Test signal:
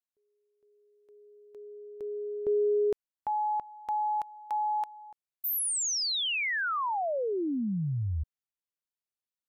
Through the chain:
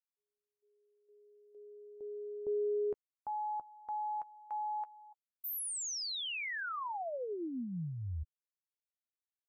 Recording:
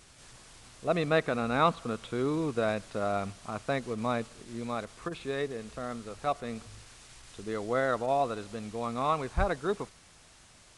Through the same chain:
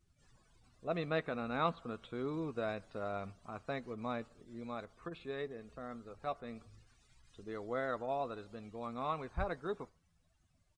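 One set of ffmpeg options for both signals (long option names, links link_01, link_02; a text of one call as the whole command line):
ffmpeg -i in.wav -filter_complex "[0:a]asplit=2[link_01][link_02];[link_02]adelay=12,volume=-13.5dB[link_03];[link_01][link_03]amix=inputs=2:normalize=0,afftdn=noise_reduction=19:noise_floor=-52,volume=-9dB" out.wav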